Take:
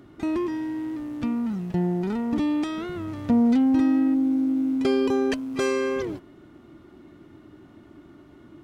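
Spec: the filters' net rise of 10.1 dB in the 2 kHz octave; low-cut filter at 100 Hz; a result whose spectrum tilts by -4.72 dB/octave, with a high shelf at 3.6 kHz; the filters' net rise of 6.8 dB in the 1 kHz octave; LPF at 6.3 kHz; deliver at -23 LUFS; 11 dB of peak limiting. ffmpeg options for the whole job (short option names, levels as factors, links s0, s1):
-af "highpass=100,lowpass=6300,equalizer=f=1000:t=o:g=5.5,equalizer=f=2000:t=o:g=9,highshelf=f=3600:g=8,volume=1.5,alimiter=limit=0.178:level=0:latency=1"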